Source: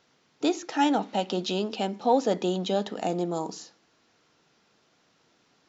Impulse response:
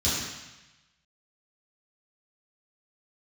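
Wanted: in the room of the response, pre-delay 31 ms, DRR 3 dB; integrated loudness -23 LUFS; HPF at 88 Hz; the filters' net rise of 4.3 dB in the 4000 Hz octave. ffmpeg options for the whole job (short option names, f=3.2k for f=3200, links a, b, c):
-filter_complex "[0:a]highpass=88,equalizer=f=4k:t=o:g=5.5,asplit=2[a][b];[1:a]atrim=start_sample=2205,adelay=31[c];[b][c]afir=irnorm=-1:irlink=0,volume=-14.5dB[d];[a][d]amix=inputs=2:normalize=0,volume=1.5dB"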